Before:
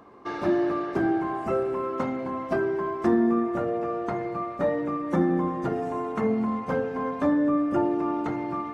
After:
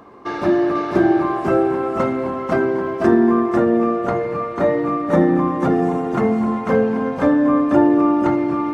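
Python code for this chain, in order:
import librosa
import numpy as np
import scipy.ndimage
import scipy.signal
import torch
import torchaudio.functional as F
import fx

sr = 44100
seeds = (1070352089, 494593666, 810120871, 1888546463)

y = x + 10.0 ** (-3.5 / 20.0) * np.pad(x, (int(494 * sr / 1000.0), 0))[:len(x)]
y = F.gain(torch.from_numpy(y), 7.0).numpy()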